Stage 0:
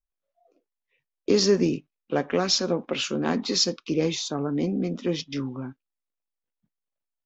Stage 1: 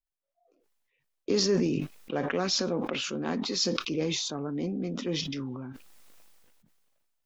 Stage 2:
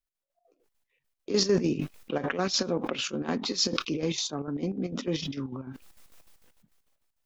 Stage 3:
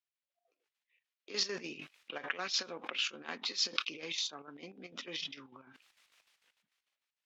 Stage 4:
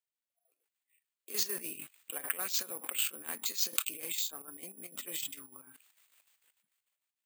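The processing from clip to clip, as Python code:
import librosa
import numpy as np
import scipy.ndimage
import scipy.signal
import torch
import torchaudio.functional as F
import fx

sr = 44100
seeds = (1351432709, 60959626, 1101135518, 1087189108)

y1 = fx.sustainer(x, sr, db_per_s=25.0)
y1 = y1 * librosa.db_to_amplitude(-6.5)
y2 = fx.chopper(y1, sr, hz=6.7, depth_pct=60, duty_pct=60)
y2 = y2 * librosa.db_to_amplitude(2.0)
y3 = fx.bandpass_q(y2, sr, hz=2600.0, q=1.1)
y4 = (np.kron(scipy.signal.resample_poly(y3, 1, 4), np.eye(4)[0]) * 4)[:len(y3)]
y4 = y4 * librosa.db_to_amplitude(-3.5)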